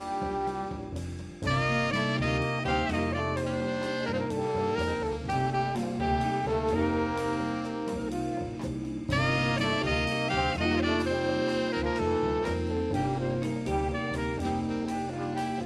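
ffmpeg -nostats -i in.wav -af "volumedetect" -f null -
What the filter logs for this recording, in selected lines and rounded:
mean_volume: -29.1 dB
max_volume: -12.6 dB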